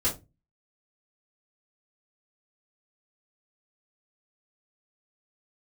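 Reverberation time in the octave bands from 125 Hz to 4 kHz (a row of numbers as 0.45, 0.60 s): 0.45, 0.35, 0.25, 0.20, 0.20, 0.15 s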